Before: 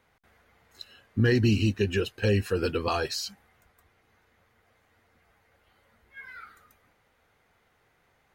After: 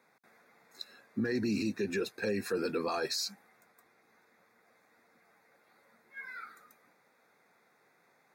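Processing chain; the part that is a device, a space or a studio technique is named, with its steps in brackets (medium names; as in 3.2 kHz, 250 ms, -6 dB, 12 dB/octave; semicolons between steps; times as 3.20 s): PA system with an anti-feedback notch (high-pass 170 Hz 24 dB/octave; Butterworth band-stop 3 kHz, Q 3.3; peak limiter -24 dBFS, peak gain reduction 11.5 dB)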